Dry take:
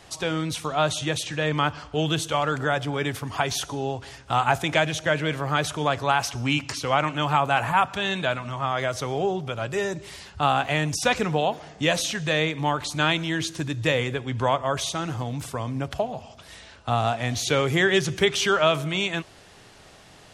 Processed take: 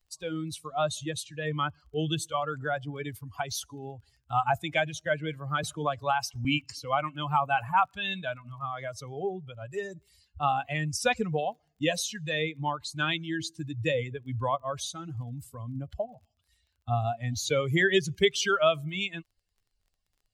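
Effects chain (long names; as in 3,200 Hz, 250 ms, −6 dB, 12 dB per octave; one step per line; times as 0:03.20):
spectral dynamics exaggerated over time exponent 2
surface crackle 17 per second −55 dBFS
0:05.63–0:06.45: multiband upward and downward compressor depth 40%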